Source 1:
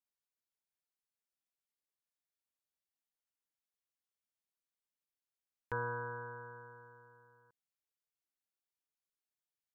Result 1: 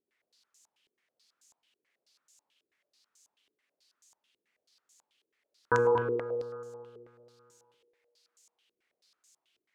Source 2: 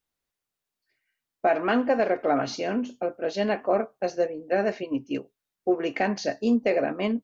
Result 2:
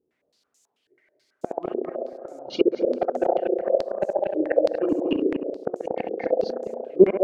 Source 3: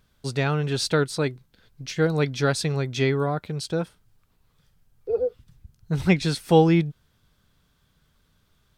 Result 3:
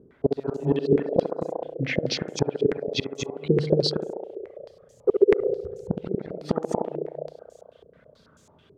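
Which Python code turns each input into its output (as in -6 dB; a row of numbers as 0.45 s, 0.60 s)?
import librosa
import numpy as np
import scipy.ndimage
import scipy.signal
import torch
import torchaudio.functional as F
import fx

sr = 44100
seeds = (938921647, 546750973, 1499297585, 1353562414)

p1 = fx.dereverb_blind(x, sr, rt60_s=1.3)
p2 = scipy.signal.sosfilt(scipy.signal.butter(2, 68.0, 'highpass', fs=sr, output='sos'), p1)
p3 = fx.peak_eq(p2, sr, hz=310.0, db=12.5, octaves=2.4)
p4 = fx.hum_notches(p3, sr, base_hz=50, count=7)
p5 = fx.gate_flip(p4, sr, shuts_db=-12.0, range_db=-37)
p6 = p5 + fx.echo_banded(p5, sr, ms=67, feedback_pct=84, hz=570.0, wet_db=-3, dry=0)
p7 = fx.dmg_noise_colour(p6, sr, seeds[0], colour='violet', level_db=-66.0)
p8 = 10.0 ** (-21.0 / 20.0) * np.tanh(p7 / 10.0 ** (-21.0 / 20.0))
p9 = p7 + F.gain(torch.from_numpy(p8), -3.5).numpy()
p10 = p9 + 10.0 ** (-4.0 / 20.0) * np.pad(p9, (int(235 * sr / 1000.0), 0))[:len(p9)]
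p11 = fx.filter_held_lowpass(p10, sr, hz=9.2, low_hz=400.0, high_hz=6800.0)
y = F.gain(torch.from_numpy(p11), -1.0).numpy()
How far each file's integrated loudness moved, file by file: +12.5 LU, +1.5 LU, -2.0 LU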